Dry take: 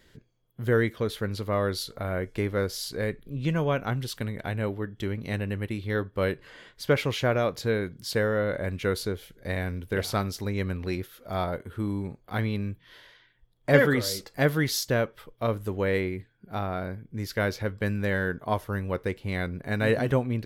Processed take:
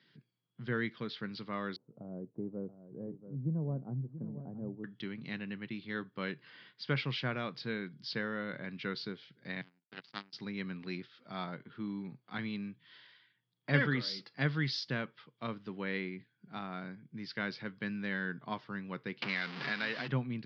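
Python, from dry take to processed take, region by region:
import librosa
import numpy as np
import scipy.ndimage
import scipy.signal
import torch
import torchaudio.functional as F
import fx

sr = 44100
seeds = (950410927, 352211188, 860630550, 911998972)

y = fx.chain(x, sr, fx.block_float(bits=5),
    fx.cheby2_lowpass(hz=2900.0, order=4, stop_db=70),
    fx.echo_single(ms=683, db=-12.0), at=(1.76, 4.84))
y = fx.chain(y, sr, fx.high_shelf(hz=6200.0, db=8.5),
    fx.power_curve(exponent=3.0), at=(9.61, 10.33))
y = fx.chain(y, sr, fx.zero_step(step_db=-26.5),
    fx.highpass(hz=710.0, slope=6),
    fx.band_squash(depth_pct=100), at=(19.22, 20.08))
y = scipy.signal.sosfilt(scipy.signal.cheby1(5, 1.0, [130.0, 5000.0], 'bandpass', fs=sr, output='sos'), y)
y = fx.peak_eq(y, sr, hz=560.0, db=-13.0, octaves=1.4)
y = y * 10.0 ** (-4.0 / 20.0)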